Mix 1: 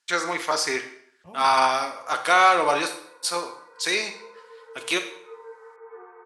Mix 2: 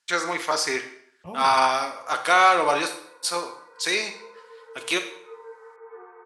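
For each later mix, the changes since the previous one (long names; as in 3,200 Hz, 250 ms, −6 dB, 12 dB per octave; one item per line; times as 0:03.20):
second voice +8.0 dB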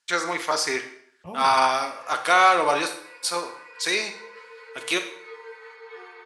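background: remove low-pass filter 1,300 Hz 24 dB per octave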